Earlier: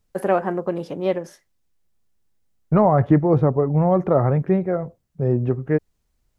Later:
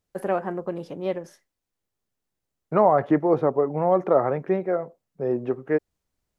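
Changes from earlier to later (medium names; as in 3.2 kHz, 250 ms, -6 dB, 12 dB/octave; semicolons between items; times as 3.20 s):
first voice -5.5 dB; second voice: add high-pass 330 Hz 12 dB/octave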